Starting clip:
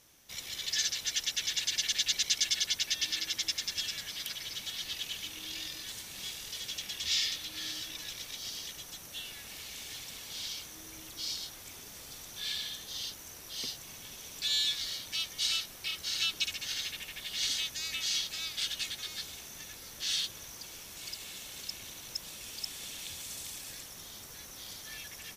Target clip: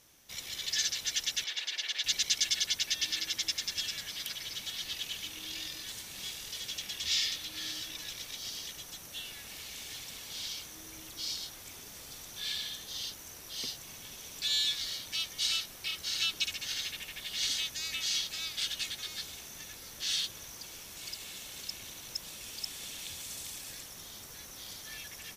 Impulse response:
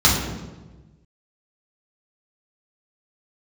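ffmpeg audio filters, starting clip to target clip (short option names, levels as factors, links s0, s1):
-filter_complex "[0:a]asettb=1/sr,asplit=3[s0][s1][s2];[s0]atrim=end=1.444[s3];[s1]atrim=start=1.44:end=2.04,asetpts=PTS-STARTPTS,afade=t=in:d=0.004:c=qsin,afade=t=out:st=0.596:d=0.004:c=qsin,acrossover=split=370 4300:gain=0.0708 1 0.2[s4][s5][s6];[s4][s5][s6]amix=inputs=3:normalize=0[s7];[s2]atrim=start=2.036[s8];[s3][s7]acrossfade=d=0.004:c1=hsin:c2=qsin[s9];[s9][s8]acrossfade=d=0.004:c1=qsin:c2=hsin"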